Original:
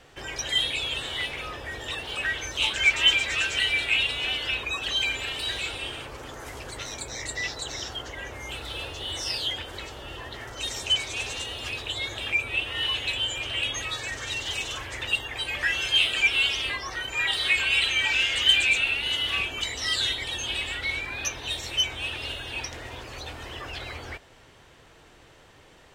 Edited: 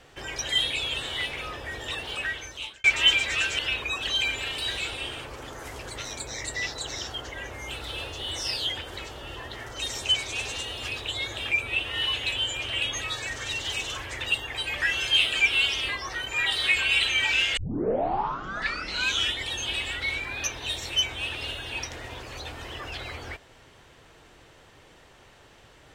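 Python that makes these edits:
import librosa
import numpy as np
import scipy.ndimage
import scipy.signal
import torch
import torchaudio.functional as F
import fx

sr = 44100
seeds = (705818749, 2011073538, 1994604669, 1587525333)

y = fx.edit(x, sr, fx.fade_out_span(start_s=2.08, length_s=0.76),
    fx.cut(start_s=3.59, length_s=0.81),
    fx.tape_start(start_s=18.38, length_s=1.87), tone=tone)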